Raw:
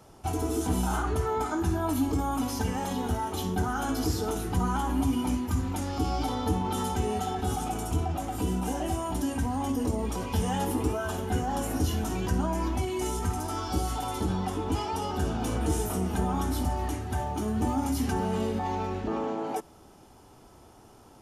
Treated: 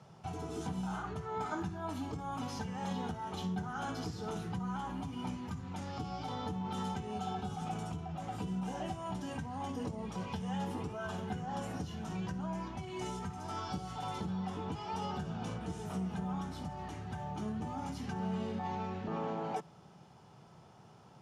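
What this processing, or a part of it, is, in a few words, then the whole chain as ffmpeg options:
jukebox: -filter_complex "[0:a]lowpass=5.2k,lowshelf=f=210:t=q:w=3:g=9.5,acompressor=threshold=-25dB:ratio=3,highpass=220,asettb=1/sr,asplit=3[a][b][c];[a]atrim=end=7.114[d];[b]atrim=start=7.11:end=7.56,asetpts=PTS-STARTPTS,afade=t=in:d=0.004:c=qsin,afade=t=out:st=0.446:d=0.004:c=qsin,bandreject=f=1.9k:w=5.2[e];[c]atrim=start=7.556[f];[d][e]acrossfade=d=0.004:c1=hsin:c2=qsin[g];[g][f]acrossfade=d=0.004:c1=qsin:c2=hsin,volume=-3.5dB"

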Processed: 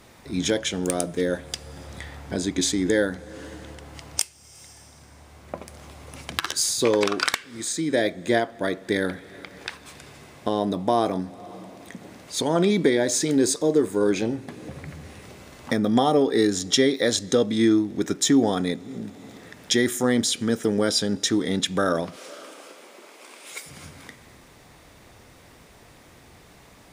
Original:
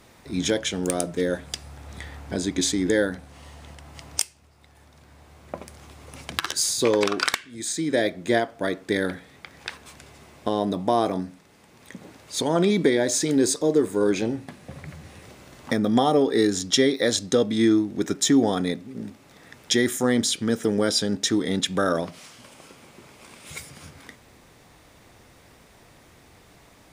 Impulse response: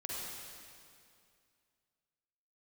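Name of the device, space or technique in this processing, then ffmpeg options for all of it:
ducked reverb: -filter_complex "[0:a]asplit=3[a][b][c];[1:a]atrim=start_sample=2205[d];[b][d]afir=irnorm=-1:irlink=0[e];[c]apad=whole_len=1187252[f];[e][f]sidechaincompress=threshold=-41dB:ratio=8:attack=8.6:release=248,volume=-8.5dB[g];[a][g]amix=inputs=2:normalize=0,asettb=1/sr,asplit=3[h][i][j];[h]atrim=end=22.164[k];[i]atrim=start=22.16:end=23.66,asetpts=PTS-STARTPTS,afade=t=in:d=0.004:c=qsin,afade=t=out:st=1.496:d=0.004:c=qsin,highpass=f=300:w=0.5412,highpass=f=300:w=1.3066[l];[j]atrim=start=23.656[m];[k][l]acrossfade=d=0.004:c1=hsin:c2=qsin[n];[n][m]acrossfade=d=0.004:c1=qsin:c2=hsin"

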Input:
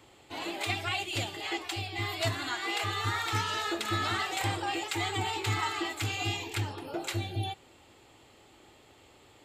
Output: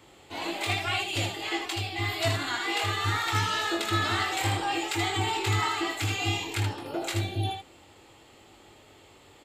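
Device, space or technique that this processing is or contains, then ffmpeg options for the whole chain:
slapback doubling: -filter_complex "[0:a]asplit=3[a][b][c];[b]adelay=21,volume=-5.5dB[d];[c]adelay=78,volume=-5dB[e];[a][d][e]amix=inputs=3:normalize=0,volume=1.5dB"

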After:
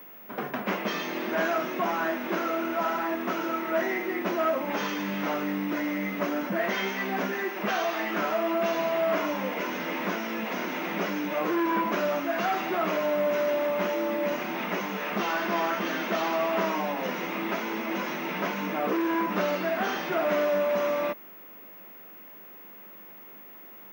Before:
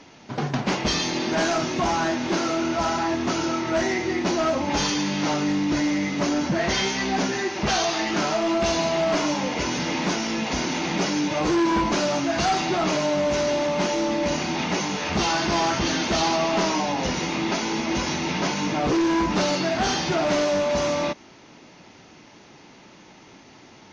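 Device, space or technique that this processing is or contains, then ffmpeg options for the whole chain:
old television with a line whistle: -filter_complex "[0:a]highpass=f=170:w=0.5412,highpass=f=170:w=1.3066,equalizer=f=200:t=q:w=4:g=10,equalizer=f=830:t=q:w=4:g=-8,equalizer=f=4.4k:t=q:w=4:g=-6,lowpass=f=7.3k:w=0.5412,lowpass=f=7.3k:w=1.3066,acrossover=split=390 2500:gain=0.178 1 0.158[a][b][c];[a][b][c]amix=inputs=3:normalize=0,aeval=exprs='val(0)+0.00562*sin(2*PI*15625*n/s)':c=same"

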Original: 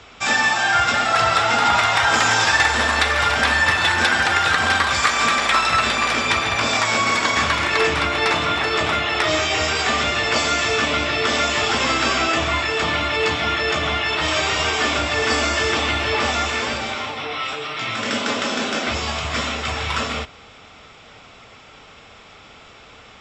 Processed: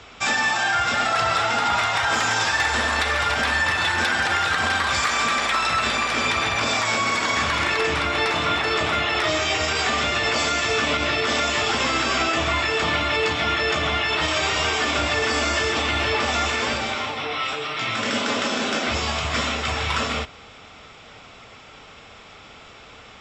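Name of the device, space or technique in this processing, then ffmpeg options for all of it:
clipper into limiter: -af "asoftclip=type=hard:threshold=-7dB,alimiter=limit=-12.5dB:level=0:latency=1:release=68"

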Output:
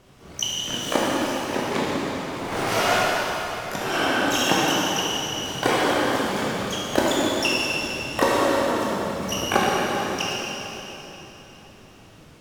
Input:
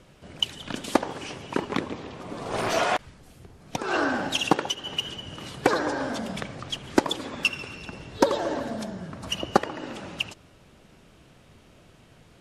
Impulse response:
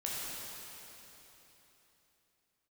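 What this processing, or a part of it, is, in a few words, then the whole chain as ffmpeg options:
shimmer-style reverb: -filter_complex "[0:a]asplit=2[a][b];[b]asetrate=88200,aresample=44100,atempo=0.5,volume=-4dB[c];[a][c]amix=inputs=2:normalize=0[d];[1:a]atrim=start_sample=2205[e];[d][e]afir=irnorm=-1:irlink=0"

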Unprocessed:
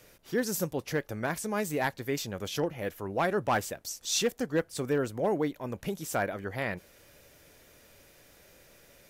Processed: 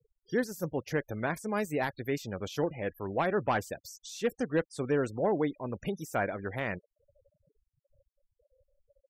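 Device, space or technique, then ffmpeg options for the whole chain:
de-esser from a sidechain: -filter_complex "[0:a]afftfilt=real='re*gte(hypot(re,im),0.00708)':imag='im*gte(hypot(re,im),0.00708)':win_size=1024:overlap=0.75,asplit=2[a][b];[b]highpass=4.7k,apad=whole_len=401182[c];[a][c]sidechaincompress=threshold=-45dB:ratio=6:attack=2.6:release=37"

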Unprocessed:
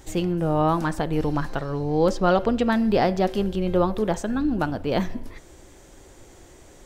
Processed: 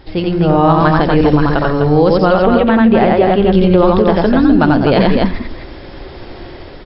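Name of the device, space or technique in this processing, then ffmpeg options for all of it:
low-bitrate web radio: -filter_complex "[0:a]asettb=1/sr,asplit=3[a][b][c];[a]atrim=end=2.334[d];[b]atrim=start=2.33:end=3.52,asetpts=PTS-STARTPTS,afade=t=in:d=0.004:c=qsin,afade=t=out:st=1.186:d=0.004:c=qsin,lowpass=f=3.2k:w=0.5412,lowpass=f=3.2k:w=1.3066[e];[c]atrim=start=3.516[f];[d][e]acrossfade=d=0.004:c1=hsin:c2=qsin[g];[g][f]acrossfade=d=0.004:c1=qsin:c2=hsin,aecho=1:1:88|252:0.708|0.447,dynaudnorm=f=130:g=7:m=9dB,alimiter=limit=-8.5dB:level=0:latency=1:release=64,volume=7.5dB" -ar 12000 -c:a libmp3lame -b:a 48k

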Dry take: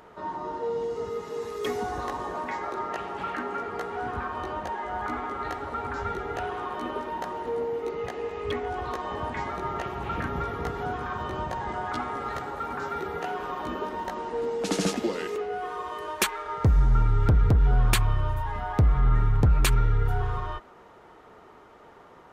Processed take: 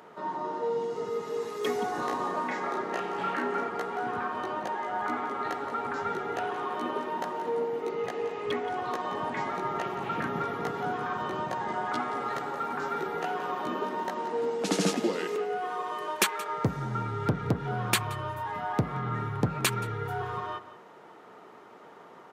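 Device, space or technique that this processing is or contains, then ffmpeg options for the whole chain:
ducked delay: -filter_complex "[0:a]asplit=3[a][b][c];[b]adelay=175,volume=-7dB[d];[c]apad=whole_len=992432[e];[d][e]sidechaincompress=threshold=-33dB:ratio=8:attack=35:release=1160[f];[a][f]amix=inputs=2:normalize=0,highpass=f=140:w=0.5412,highpass=f=140:w=1.3066,asettb=1/sr,asplit=3[g][h][i];[g]atrim=end=1.914[j];[h]atrim=start=1.91:end=3.69,asetpts=PTS-STARTPTS,afade=t=in:d=0.004:c=qsin,afade=t=out:st=1.776:d=0.004:c=qsin,asplit=2[k][l];[l]adelay=32,volume=-4dB[m];[k][m]amix=inputs=2:normalize=0,atrim=end_sample=78498[n];[i]atrim=start=3.686[o];[j][n]acrossfade=d=0.004:c1=hsin:c2=qsin[p];[p][o]acrossfade=d=0.004:c1=qsin:c2=hsin"

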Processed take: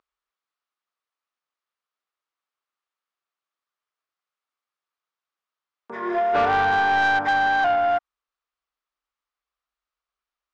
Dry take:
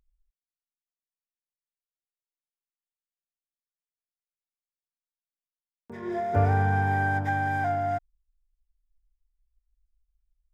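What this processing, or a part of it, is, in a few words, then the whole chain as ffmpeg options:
intercom: -af "highpass=390,lowpass=4.1k,equalizer=f=1.2k:t=o:w=0.54:g=10.5,asoftclip=type=tanh:threshold=-24dB,volume=9dB"

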